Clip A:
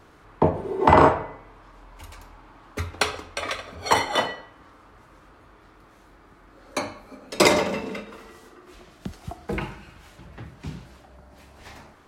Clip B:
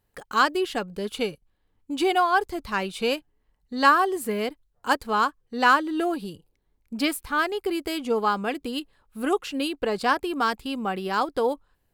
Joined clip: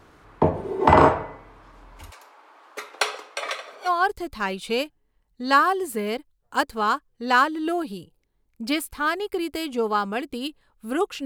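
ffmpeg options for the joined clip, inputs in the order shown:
-filter_complex "[0:a]asplit=3[a][b][c];[a]afade=t=out:st=2.1:d=0.02[d];[b]highpass=f=420:w=0.5412,highpass=f=420:w=1.3066,afade=t=in:st=2.1:d=0.02,afade=t=out:st=3.9:d=0.02[e];[c]afade=t=in:st=3.9:d=0.02[f];[d][e][f]amix=inputs=3:normalize=0,apad=whole_dur=11.25,atrim=end=11.25,atrim=end=3.9,asetpts=PTS-STARTPTS[g];[1:a]atrim=start=2.16:end=9.57,asetpts=PTS-STARTPTS[h];[g][h]acrossfade=d=0.06:c1=tri:c2=tri"

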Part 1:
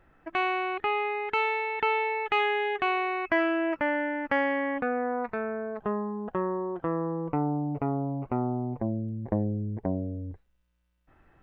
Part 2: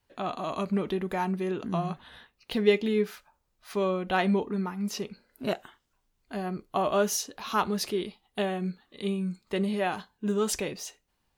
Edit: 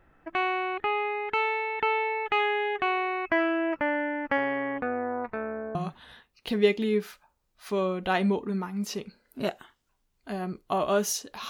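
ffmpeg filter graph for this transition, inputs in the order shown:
-filter_complex "[0:a]asettb=1/sr,asplit=3[a][b][c];[a]atrim=end=4.374[d];[b]atrim=start=4.37:end=5.75,asetpts=PTS-STARTPTS,afade=t=in:d=0.004:c=qsin,afade=t=out:st=1.376:d=0.004:c=qsin,tremolo=f=150:d=0.333[e];[c]atrim=start=5.746[f];[d][e]acrossfade=d=0.004:c1=hsin:c2=qsin[g];[g][f]acrossfade=d=0.004:c1=qsin:c2=hsin,apad=whole_dur=11.49,atrim=end=11.49,atrim=end=5.752[h];[1:a]atrim=start=1.788:end=7.53[i];[h][i]acrossfade=d=0.004:c1=hsin:c2=hsin"

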